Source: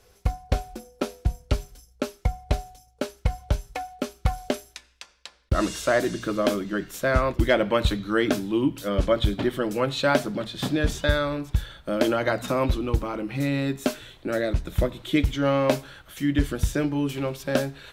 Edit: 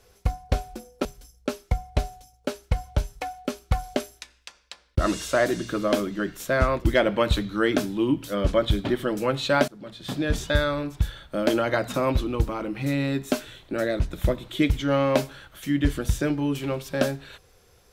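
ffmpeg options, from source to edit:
-filter_complex "[0:a]asplit=3[a][b][c];[a]atrim=end=1.052[d];[b]atrim=start=1.588:end=10.22,asetpts=PTS-STARTPTS,afade=t=out:st=8.628:d=0.004:c=hsin:silence=0.0749894[e];[c]atrim=start=10.22,asetpts=PTS-STARTPTS,afade=t=in:d=0.71:silence=0.0749894[f];[e][f]concat=n=2:v=0:a=1[g];[d][g]acrossfade=d=0.004:c1=hsin:c2=hsin"

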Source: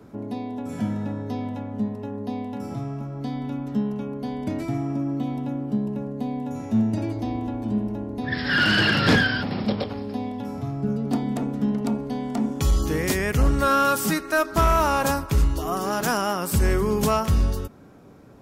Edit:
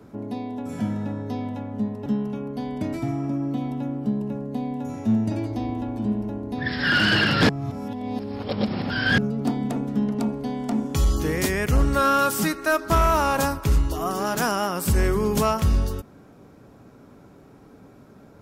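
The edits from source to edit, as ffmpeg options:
-filter_complex "[0:a]asplit=4[a][b][c][d];[a]atrim=end=2.062[e];[b]atrim=start=3.718:end=9.152[f];[c]atrim=start=9.148:end=10.842,asetpts=PTS-STARTPTS,areverse[g];[d]atrim=start=10.838[h];[e][f]acrossfade=d=0.004:c1=hsin:c2=hsin[i];[i][g]acrossfade=d=0.004:c1=hsin:c2=hsin[j];[j][h]acrossfade=d=0.004:c1=hsin:c2=hsin"

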